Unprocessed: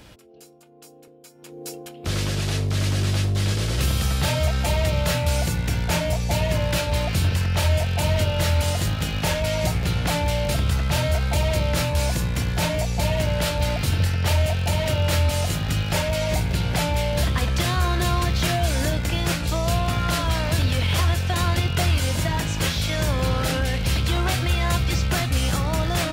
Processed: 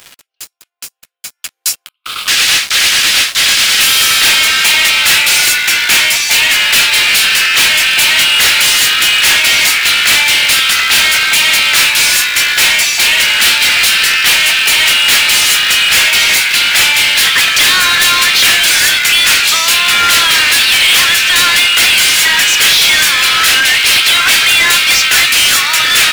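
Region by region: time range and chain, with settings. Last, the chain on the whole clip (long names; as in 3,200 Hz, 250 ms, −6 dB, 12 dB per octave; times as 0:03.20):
0:01.86–0:02.28: four-pole ladder high-pass 1,100 Hz, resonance 70% + phaser with its sweep stopped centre 1,800 Hz, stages 6
whole clip: high-pass filter 1,500 Hz 24 dB per octave; dynamic equaliser 2,500 Hz, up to +4 dB, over −39 dBFS, Q 0.93; leveller curve on the samples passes 5; level +7 dB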